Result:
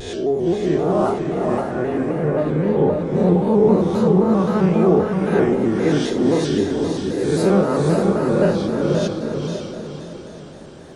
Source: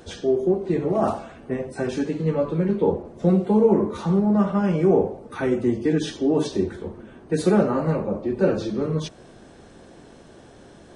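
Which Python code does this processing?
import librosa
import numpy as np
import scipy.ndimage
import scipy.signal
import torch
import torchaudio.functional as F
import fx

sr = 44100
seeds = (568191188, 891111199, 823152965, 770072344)

p1 = fx.spec_swells(x, sr, rise_s=0.9)
p2 = fx.lowpass(p1, sr, hz=2300.0, slope=24, at=(1.6, 2.38))
p3 = p2 + fx.echo_diffused(p2, sr, ms=525, feedback_pct=43, wet_db=-3.0, dry=0)
y = fx.vibrato_shape(p3, sr, shape='square', rate_hz=3.8, depth_cents=100.0)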